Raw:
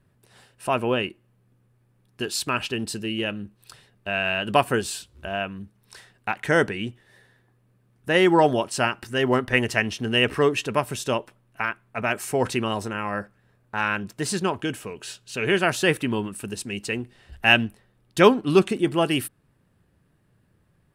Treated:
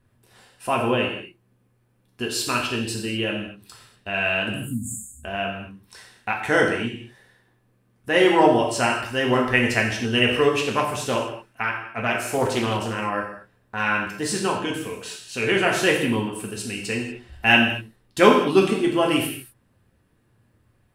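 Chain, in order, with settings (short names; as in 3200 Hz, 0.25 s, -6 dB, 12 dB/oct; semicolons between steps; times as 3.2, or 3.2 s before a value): 4.53–5.24 spectral delete 280–6500 Hz; non-linear reverb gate 0.27 s falling, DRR -1.5 dB; 10.59–13.01 Doppler distortion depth 0.26 ms; gain -1.5 dB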